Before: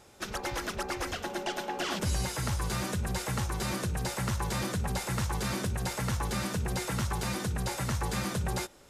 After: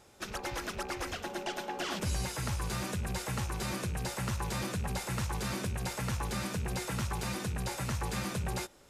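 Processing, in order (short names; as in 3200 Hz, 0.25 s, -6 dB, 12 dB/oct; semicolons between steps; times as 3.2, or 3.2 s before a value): rattling part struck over -43 dBFS, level -36 dBFS; gain -3 dB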